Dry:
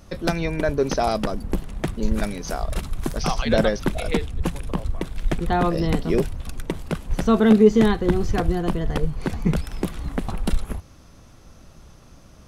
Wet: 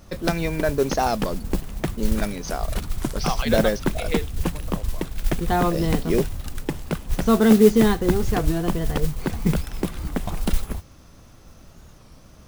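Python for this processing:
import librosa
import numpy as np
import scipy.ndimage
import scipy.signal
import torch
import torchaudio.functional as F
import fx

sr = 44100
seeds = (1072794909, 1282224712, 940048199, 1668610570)

y = fx.mod_noise(x, sr, seeds[0], snr_db=20)
y = fx.record_warp(y, sr, rpm=33.33, depth_cents=160.0)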